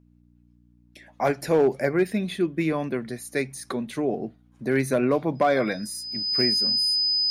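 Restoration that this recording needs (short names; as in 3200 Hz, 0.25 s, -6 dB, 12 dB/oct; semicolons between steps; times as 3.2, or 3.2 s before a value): clip repair -13 dBFS; de-hum 59.6 Hz, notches 5; notch 5000 Hz, Q 30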